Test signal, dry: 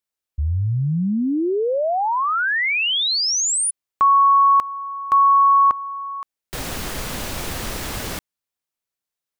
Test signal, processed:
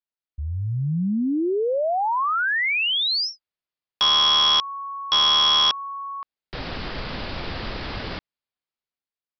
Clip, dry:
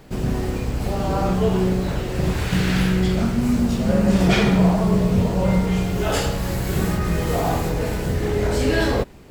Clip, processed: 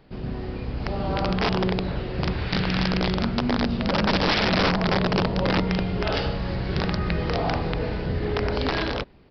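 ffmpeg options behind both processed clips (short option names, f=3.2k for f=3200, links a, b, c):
-af "aresample=11025,aeval=exprs='(mod(3.76*val(0)+1,2)-1)/3.76':c=same,aresample=44100,dynaudnorm=f=130:g=11:m=6.5dB,volume=-8.5dB"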